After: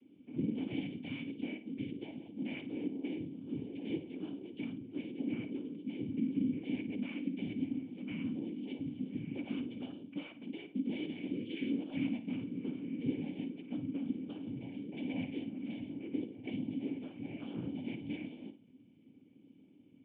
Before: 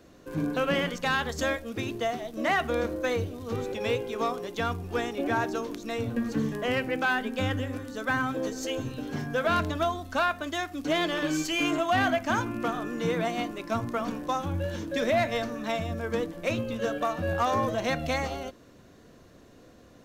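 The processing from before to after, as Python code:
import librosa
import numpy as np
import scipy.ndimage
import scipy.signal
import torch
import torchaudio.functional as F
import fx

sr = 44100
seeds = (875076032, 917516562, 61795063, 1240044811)

p1 = fx.dynamic_eq(x, sr, hz=1100.0, q=0.8, threshold_db=-38.0, ratio=4.0, max_db=-5)
p2 = fx.rider(p1, sr, range_db=10, speed_s=2.0)
p3 = p1 + F.gain(torch.from_numpy(p2), -2.5).numpy()
p4 = fx.noise_vocoder(p3, sr, seeds[0], bands=8)
p5 = fx.quant_float(p4, sr, bits=2)
p6 = fx.formant_cascade(p5, sr, vowel='i')
p7 = p6 + fx.room_flutter(p6, sr, wall_m=9.3, rt60_s=0.28, dry=0)
y = F.gain(torch.from_numpy(p7), -4.5).numpy()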